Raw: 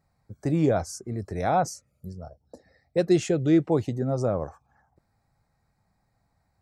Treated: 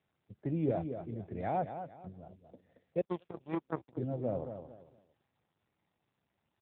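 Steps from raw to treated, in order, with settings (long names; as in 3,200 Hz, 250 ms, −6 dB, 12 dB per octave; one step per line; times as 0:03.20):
parametric band 1,200 Hz −9 dB 0.47 octaves
repeating echo 226 ms, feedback 29%, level −8.5 dB
0:03.01–0:03.97: power curve on the samples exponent 3
level −8.5 dB
AMR narrowband 7.4 kbit/s 8,000 Hz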